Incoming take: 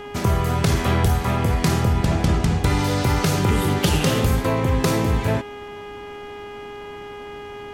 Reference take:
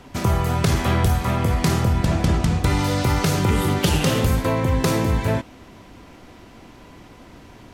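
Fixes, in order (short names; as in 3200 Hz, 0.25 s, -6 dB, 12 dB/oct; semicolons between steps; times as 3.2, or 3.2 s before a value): de-hum 411.3 Hz, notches 8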